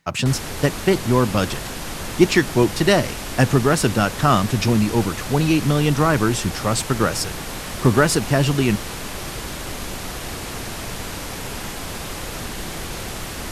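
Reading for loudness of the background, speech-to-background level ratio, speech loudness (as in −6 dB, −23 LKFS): −29.5 LKFS, 10.0 dB, −19.5 LKFS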